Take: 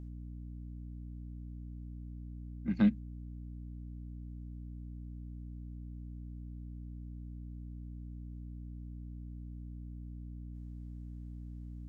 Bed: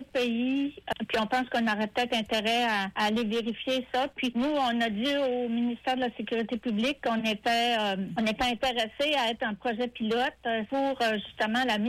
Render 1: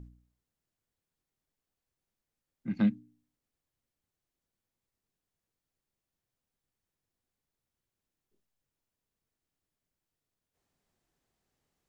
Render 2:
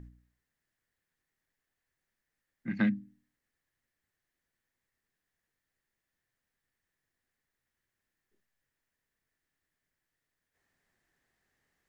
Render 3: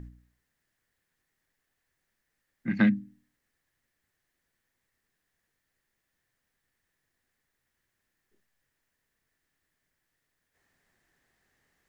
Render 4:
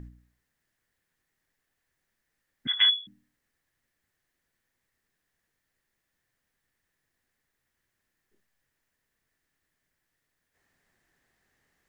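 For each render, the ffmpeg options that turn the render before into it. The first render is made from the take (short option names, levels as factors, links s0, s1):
-af "bandreject=f=60:t=h:w=4,bandreject=f=120:t=h:w=4,bandreject=f=180:t=h:w=4,bandreject=f=240:t=h:w=4,bandreject=f=300:t=h:w=4"
-af "equalizer=f=1800:w=2.6:g=14,bandreject=f=50:t=h:w=6,bandreject=f=100:t=h:w=6,bandreject=f=150:t=h:w=6,bandreject=f=200:t=h:w=6"
-af "volume=1.88"
-filter_complex "[0:a]asettb=1/sr,asplit=3[s0][s1][s2];[s0]atrim=end=2.674[s3];[s1]atrim=start=2.67:end=3.07,asetpts=PTS-STARTPTS,afade=t=in:d=0.004:c=qsin,afade=t=out:st=0.396:d=0.004:c=qsin,lowpass=f=3100:t=q:w=0.5098,lowpass=f=3100:t=q:w=0.6013,lowpass=f=3100:t=q:w=0.9,lowpass=f=3100:t=q:w=2.563,afreqshift=-3600[s4];[s2]atrim=start=3.066[s5];[s3][s4]acrossfade=d=0.004:c1=hsin:c2=qsin[s6];[s6][s5]acrossfade=d=0.004:c1=qsin:c2=hsin"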